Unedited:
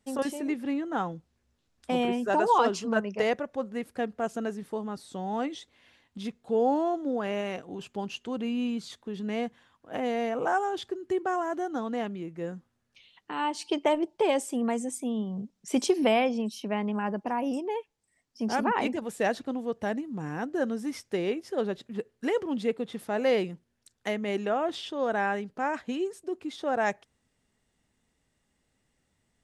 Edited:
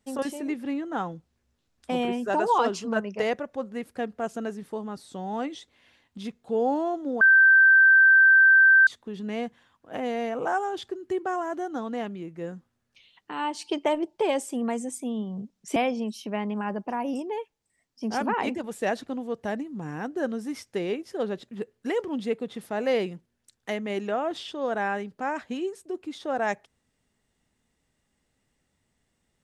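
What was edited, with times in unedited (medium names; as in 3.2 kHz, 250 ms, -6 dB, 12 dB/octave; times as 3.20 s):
7.21–8.87 s: bleep 1.56 kHz -12.5 dBFS
15.76–16.14 s: delete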